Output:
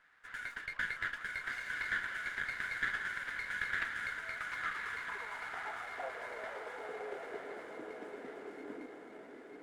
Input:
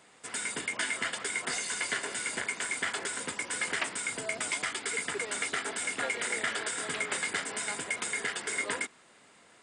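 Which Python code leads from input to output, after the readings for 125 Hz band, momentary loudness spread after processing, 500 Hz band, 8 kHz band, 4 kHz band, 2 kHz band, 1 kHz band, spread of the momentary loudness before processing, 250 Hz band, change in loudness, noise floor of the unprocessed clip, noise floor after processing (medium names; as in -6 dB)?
-7.5 dB, 12 LU, -6.0 dB, -27.0 dB, -14.0 dB, -4.5 dB, -5.0 dB, 3 LU, -8.0 dB, -7.5 dB, -59 dBFS, -52 dBFS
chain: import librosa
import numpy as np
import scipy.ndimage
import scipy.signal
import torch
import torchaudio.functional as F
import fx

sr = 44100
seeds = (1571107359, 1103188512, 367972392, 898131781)

p1 = fx.filter_sweep_bandpass(x, sr, from_hz=1600.0, to_hz=290.0, start_s=4.13, end_s=8.1, q=4.8)
p2 = p1 + fx.echo_diffused(p1, sr, ms=1065, feedback_pct=50, wet_db=-3.0, dry=0)
p3 = fx.running_max(p2, sr, window=3)
y = F.gain(torch.from_numpy(p3), 1.5).numpy()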